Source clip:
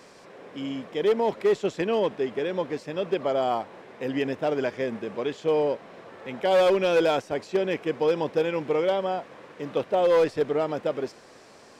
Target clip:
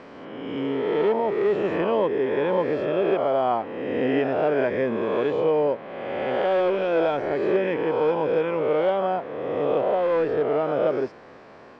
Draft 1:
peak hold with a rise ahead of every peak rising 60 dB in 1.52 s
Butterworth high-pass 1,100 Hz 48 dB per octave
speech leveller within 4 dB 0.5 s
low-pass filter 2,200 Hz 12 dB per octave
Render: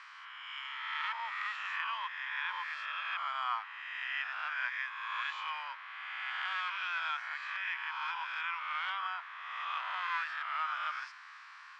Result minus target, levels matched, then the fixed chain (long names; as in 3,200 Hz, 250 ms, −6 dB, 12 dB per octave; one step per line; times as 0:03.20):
1,000 Hz band +4.5 dB
peak hold with a rise ahead of every peak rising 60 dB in 1.52 s
speech leveller within 4 dB 0.5 s
low-pass filter 2,200 Hz 12 dB per octave